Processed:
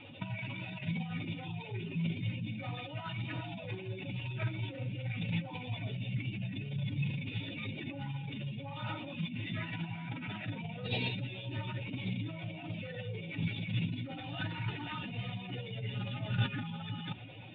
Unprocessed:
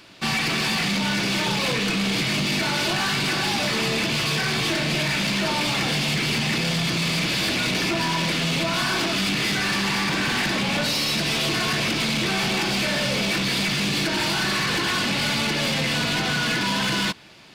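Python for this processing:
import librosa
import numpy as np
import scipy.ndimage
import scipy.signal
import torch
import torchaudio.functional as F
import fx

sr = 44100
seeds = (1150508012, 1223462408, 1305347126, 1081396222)

y = fx.spec_expand(x, sr, power=2.1)
y = fx.peak_eq(y, sr, hz=1400.0, db=-12.0, octaves=0.47)
y = fx.pitch_keep_formants(y, sr, semitones=-3.0)
y = scipy.signal.sosfilt(scipy.signal.cheby1(6, 6, 3700.0, 'lowpass', fs=sr, output='sos'), y)
y = fx.over_compress(y, sr, threshold_db=-35.0, ratio=-0.5)
y = fx.peak_eq(y, sr, hz=110.0, db=14.0, octaves=0.34)
y = y * librosa.db_to_amplitude(-4.0)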